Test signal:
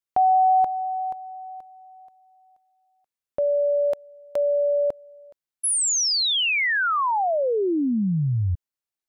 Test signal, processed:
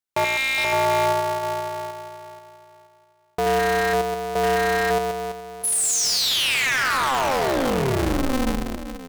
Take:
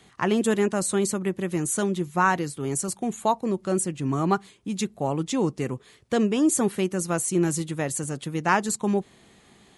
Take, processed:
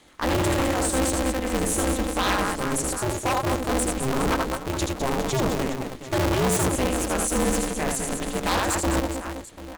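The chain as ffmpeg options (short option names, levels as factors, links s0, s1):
-af "aecho=1:1:80|208|412.8|740.5|1265:0.631|0.398|0.251|0.158|0.1,aeval=exprs='0.15*(abs(mod(val(0)/0.15+3,4)-2)-1)':c=same,aeval=exprs='val(0)*sgn(sin(2*PI*130*n/s))':c=same"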